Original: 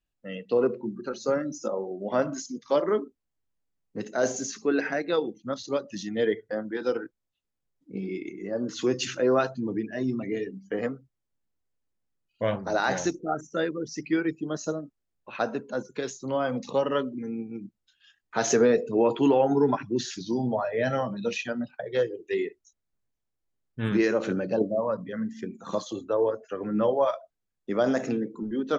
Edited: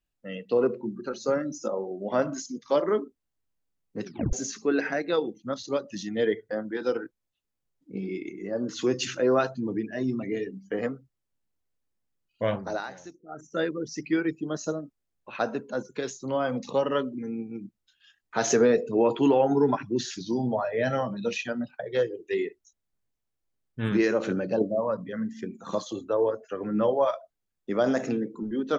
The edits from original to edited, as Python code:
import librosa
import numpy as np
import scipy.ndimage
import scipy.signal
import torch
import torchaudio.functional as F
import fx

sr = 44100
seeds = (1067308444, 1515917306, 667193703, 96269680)

y = fx.edit(x, sr, fx.tape_stop(start_s=4.04, length_s=0.29),
    fx.fade_down_up(start_s=12.59, length_s=1.01, db=-17.5, fade_s=0.32), tone=tone)